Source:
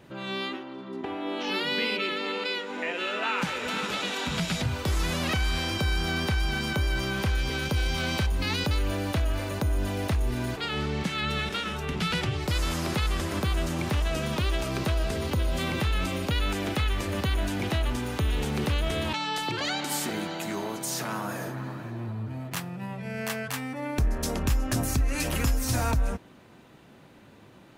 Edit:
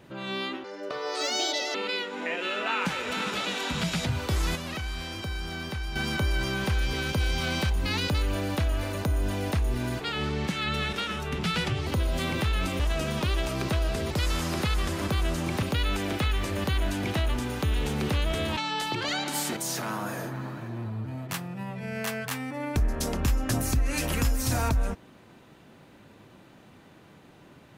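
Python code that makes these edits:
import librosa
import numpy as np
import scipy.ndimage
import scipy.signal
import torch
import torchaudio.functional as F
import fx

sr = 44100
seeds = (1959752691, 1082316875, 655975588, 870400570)

y = fx.edit(x, sr, fx.speed_span(start_s=0.64, length_s=1.67, speed=1.51),
    fx.clip_gain(start_s=5.12, length_s=1.4, db=-7.0),
    fx.swap(start_s=12.43, length_s=1.52, other_s=15.26, other_length_s=0.93),
    fx.cut(start_s=20.13, length_s=0.66), tone=tone)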